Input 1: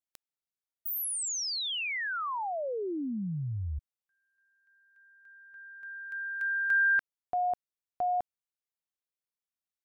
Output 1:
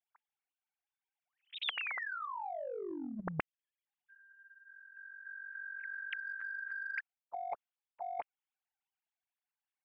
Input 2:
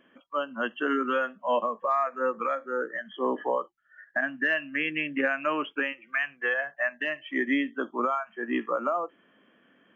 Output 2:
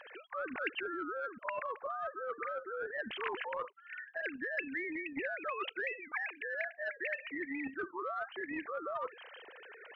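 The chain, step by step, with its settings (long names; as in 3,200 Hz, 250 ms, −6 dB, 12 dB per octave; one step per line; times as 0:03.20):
three sine waves on the formant tracks
reversed playback
downward compressor 6 to 1, threshold −37 dBFS
reversed playback
every bin compressed towards the loudest bin 2 to 1
level +5 dB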